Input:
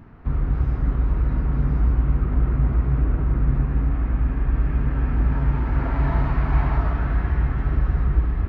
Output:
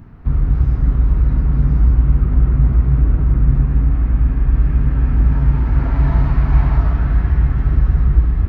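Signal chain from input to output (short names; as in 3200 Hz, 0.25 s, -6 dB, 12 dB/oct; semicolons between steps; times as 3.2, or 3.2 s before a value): tone controls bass +7 dB, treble +7 dB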